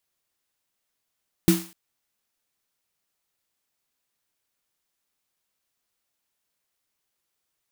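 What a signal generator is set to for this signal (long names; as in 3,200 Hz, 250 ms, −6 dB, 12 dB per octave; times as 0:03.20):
synth snare length 0.25 s, tones 180 Hz, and 330 Hz, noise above 680 Hz, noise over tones −9.5 dB, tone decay 0.30 s, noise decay 0.45 s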